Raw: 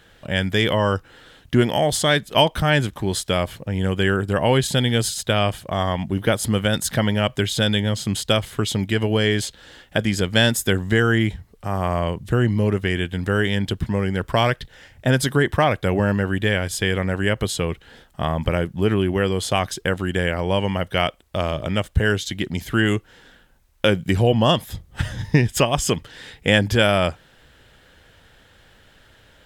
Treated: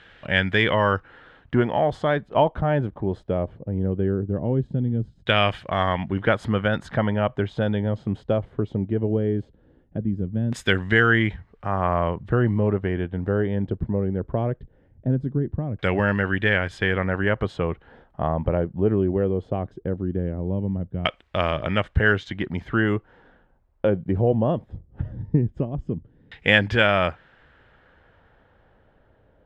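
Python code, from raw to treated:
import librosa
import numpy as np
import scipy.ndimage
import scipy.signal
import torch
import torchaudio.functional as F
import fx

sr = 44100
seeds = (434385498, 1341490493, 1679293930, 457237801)

p1 = fx.cheby_harmonics(x, sr, harmonics=(6,), levels_db=(-34,), full_scale_db=-2.0)
p2 = fx.rider(p1, sr, range_db=10, speed_s=2.0)
p3 = p1 + (p2 * 10.0 ** (-2.5 / 20.0))
p4 = fx.tilt_shelf(p3, sr, db=-4.5, hz=1300.0)
p5 = fx.filter_lfo_lowpass(p4, sr, shape='saw_down', hz=0.19, low_hz=220.0, high_hz=2500.0, q=1.0)
y = p5 * 10.0 ** (-3.5 / 20.0)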